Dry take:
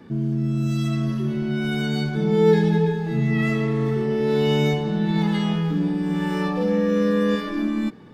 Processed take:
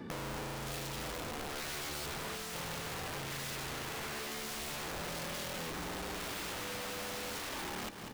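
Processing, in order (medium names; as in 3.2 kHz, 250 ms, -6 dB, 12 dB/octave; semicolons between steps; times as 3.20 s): saturation -21.5 dBFS, distortion -10 dB; dynamic bell 220 Hz, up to -6 dB, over -41 dBFS, Q 2; integer overflow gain 28 dB; on a send: feedback delay 195 ms, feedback 52%, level -13.5 dB; on the sum: compression 4:1, threshold -42 dBFS, peak gain reduction 10.5 dB; trim +1 dB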